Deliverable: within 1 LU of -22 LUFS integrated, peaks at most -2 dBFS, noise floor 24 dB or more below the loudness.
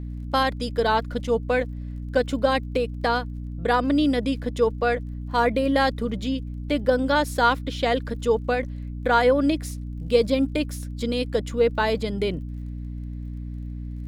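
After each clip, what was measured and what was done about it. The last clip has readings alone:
ticks 27/s; hum 60 Hz; harmonics up to 300 Hz; hum level -30 dBFS; loudness -24.0 LUFS; peak -6.5 dBFS; loudness target -22.0 LUFS
-> de-click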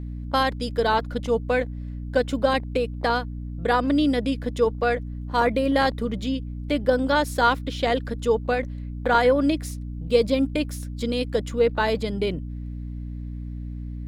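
ticks 1.1/s; hum 60 Hz; harmonics up to 300 Hz; hum level -30 dBFS
-> notches 60/120/180/240/300 Hz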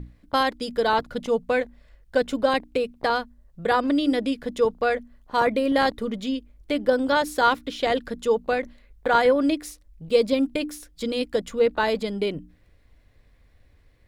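hum none; loudness -24.0 LUFS; peak -7.0 dBFS; loudness target -22.0 LUFS
-> gain +2 dB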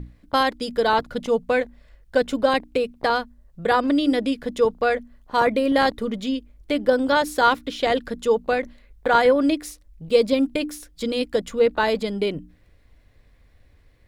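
loudness -22.0 LUFS; peak -5.0 dBFS; noise floor -56 dBFS

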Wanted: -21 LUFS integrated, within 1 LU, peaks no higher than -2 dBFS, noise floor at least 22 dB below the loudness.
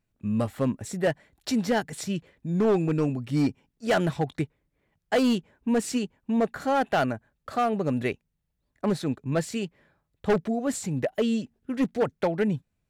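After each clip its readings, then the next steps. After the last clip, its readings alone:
clipped 1.4%; flat tops at -17.5 dBFS; loudness -27.5 LUFS; peak -17.5 dBFS; loudness target -21.0 LUFS
-> clip repair -17.5 dBFS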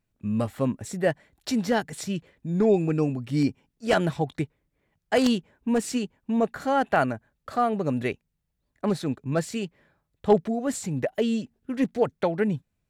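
clipped 0.0%; loudness -26.5 LUFS; peak -8.5 dBFS; loudness target -21.0 LUFS
-> gain +5.5 dB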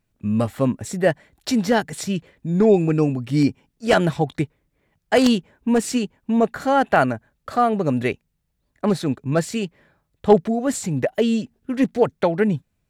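loudness -21.0 LUFS; peak -3.0 dBFS; noise floor -73 dBFS

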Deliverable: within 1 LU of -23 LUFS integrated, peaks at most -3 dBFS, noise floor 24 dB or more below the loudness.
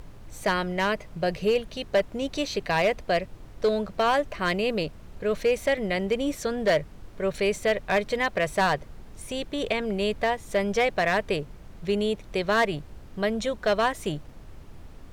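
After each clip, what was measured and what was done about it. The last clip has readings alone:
clipped 0.6%; flat tops at -16.0 dBFS; noise floor -46 dBFS; noise floor target -51 dBFS; loudness -26.5 LUFS; peak -16.0 dBFS; loudness target -23.0 LUFS
-> clip repair -16 dBFS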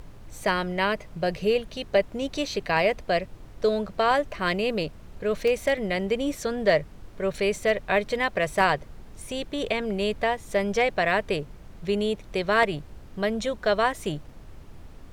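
clipped 0.0%; noise floor -46 dBFS; noise floor target -50 dBFS
-> noise print and reduce 6 dB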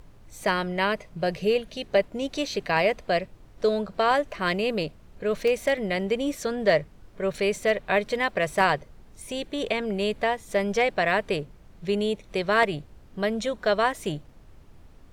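noise floor -51 dBFS; loudness -26.0 LUFS; peak -7.0 dBFS; loudness target -23.0 LUFS
-> gain +3 dB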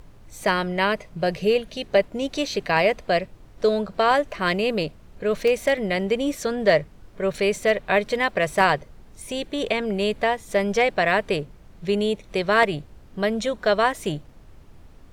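loudness -23.0 LUFS; peak -4.0 dBFS; noise floor -48 dBFS

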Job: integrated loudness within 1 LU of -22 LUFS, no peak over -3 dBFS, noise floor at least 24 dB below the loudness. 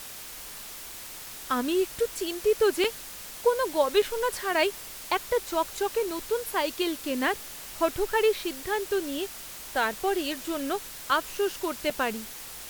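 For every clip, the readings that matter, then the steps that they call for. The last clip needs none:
dropouts 3; longest dropout 4.2 ms; noise floor -42 dBFS; noise floor target -53 dBFS; loudness -28.5 LUFS; peak -11.0 dBFS; loudness target -22.0 LUFS
-> interpolate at 2.84/4.02/11.9, 4.2 ms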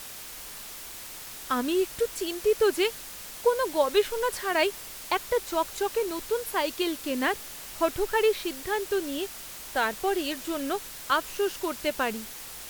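dropouts 0; noise floor -42 dBFS; noise floor target -53 dBFS
-> denoiser 11 dB, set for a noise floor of -42 dBFS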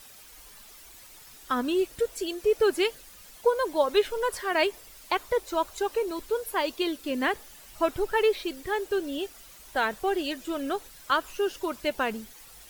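noise floor -50 dBFS; noise floor target -53 dBFS
-> denoiser 6 dB, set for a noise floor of -50 dBFS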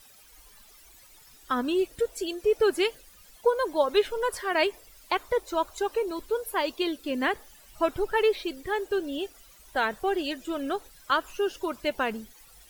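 noise floor -54 dBFS; loudness -28.5 LUFS; peak -11.0 dBFS; loudness target -22.0 LUFS
-> gain +6.5 dB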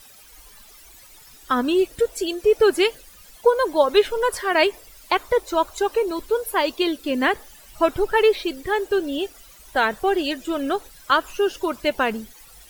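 loudness -22.0 LUFS; peak -4.5 dBFS; noise floor -48 dBFS

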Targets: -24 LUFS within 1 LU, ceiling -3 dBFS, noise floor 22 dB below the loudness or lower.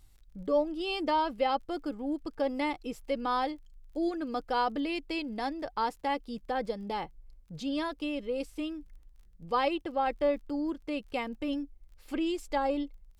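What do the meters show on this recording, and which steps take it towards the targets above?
ticks 28/s; loudness -32.5 LUFS; peak -16.5 dBFS; loudness target -24.0 LUFS
-> de-click; gain +8.5 dB

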